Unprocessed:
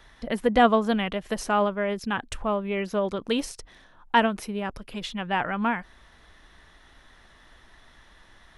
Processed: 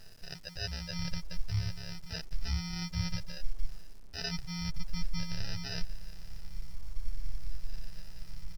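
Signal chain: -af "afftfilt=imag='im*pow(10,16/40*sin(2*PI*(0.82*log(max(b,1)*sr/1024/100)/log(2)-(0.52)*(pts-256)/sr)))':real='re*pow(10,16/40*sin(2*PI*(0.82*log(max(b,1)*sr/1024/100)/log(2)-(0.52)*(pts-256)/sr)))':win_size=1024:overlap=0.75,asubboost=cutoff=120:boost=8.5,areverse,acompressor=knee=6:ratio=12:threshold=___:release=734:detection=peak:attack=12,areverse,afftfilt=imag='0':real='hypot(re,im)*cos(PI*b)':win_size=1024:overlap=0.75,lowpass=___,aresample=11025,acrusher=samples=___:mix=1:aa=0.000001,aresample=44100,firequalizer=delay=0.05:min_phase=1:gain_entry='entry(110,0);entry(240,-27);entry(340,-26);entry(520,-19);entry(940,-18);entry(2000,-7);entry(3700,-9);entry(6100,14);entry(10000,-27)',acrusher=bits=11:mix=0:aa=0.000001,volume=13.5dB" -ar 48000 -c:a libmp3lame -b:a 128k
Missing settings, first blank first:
-31dB, 1500, 10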